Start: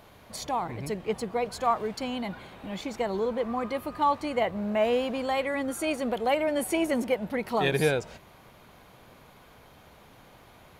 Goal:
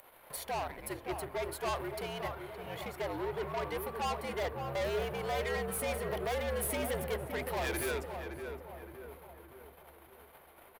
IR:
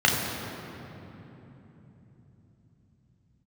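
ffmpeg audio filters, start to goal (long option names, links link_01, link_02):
-filter_complex "[0:a]highpass=57,bandreject=frequency=60:width_type=h:width=6,bandreject=frequency=120:width_type=h:width=6,bandreject=frequency=180:width_type=h:width=6,bandreject=frequency=240:width_type=h:width=6,bandreject=frequency=300:width_type=h:width=6,bandreject=frequency=360:width_type=h:width=6,bandreject=frequency=420:width_type=h:width=6,bandreject=frequency=480:width_type=h:width=6,agate=range=-26dB:threshold=-51dB:ratio=16:detection=peak,acrossover=split=510 3100:gain=0.2 1 0.251[link_01][link_02][link_03];[link_01][link_02][link_03]amix=inputs=3:normalize=0,acompressor=mode=upward:threshold=-43dB:ratio=2.5,aexciter=amount=7.9:drive=6.6:freq=9200,aeval=exprs='(tanh(50.1*val(0)+0.3)-tanh(0.3))/50.1':channel_layout=same,afreqshift=-74,aeval=exprs='0.0398*(cos(1*acos(clip(val(0)/0.0398,-1,1)))-cos(1*PI/2))+0.00224*(cos(7*acos(clip(val(0)/0.0398,-1,1)))-cos(7*PI/2))':channel_layout=same,asplit=2[link_04][link_05];[link_05]adelay=567,lowpass=frequency=1500:poles=1,volume=-6dB,asplit=2[link_06][link_07];[link_07]adelay=567,lowpass=frequency=1500:poles=1,volume=0.52,asplit=2[link_08][link_09];[link_09]adelay=567,lowpass=frequency=1500:poles=1,volume=0.52,asplit=2[link_10][link_11];[link_11]adelay=567,lowpass=frequency=1500:poles=1,volume=0.52,asplit=2[link_12][link_13];[link_13]adelay=567,lowpass=frequency=1500:poles=1,volume=0.52,asplit=2[link_14][link_15];[link_15]adelay=567,lowpass=frequency=1500:poles=1,volume=0.52[link_16];[link_06][link_08][link_10][link_12][link_14][link_16]amix=inputs=6:normalize=0[link_17];[link_04][link_17]amix=inputs=2:normalize=0,volume=2dB"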